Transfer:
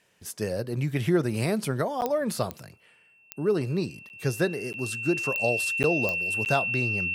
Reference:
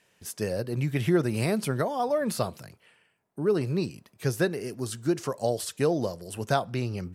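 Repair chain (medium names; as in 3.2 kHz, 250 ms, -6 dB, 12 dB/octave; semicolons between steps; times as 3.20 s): clip repair -12 dBFS; de-click; band-stop 2.7 kHz, Q 30; interpolate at 2.01/4.09/4.73/5.83/6.45 s, 9.6 ms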